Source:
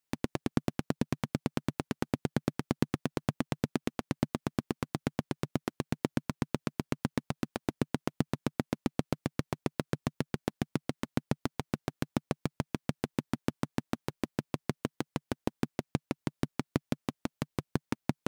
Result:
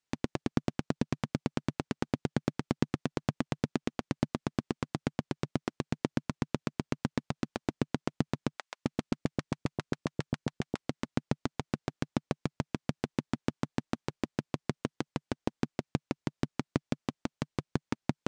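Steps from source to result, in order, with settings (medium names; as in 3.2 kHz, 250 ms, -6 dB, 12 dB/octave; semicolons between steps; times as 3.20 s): low-pass 7.9 kHz 24 dB/octave; 8.57–10.84 s: bands offset in time highs, lows 260 ms, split 750 Hz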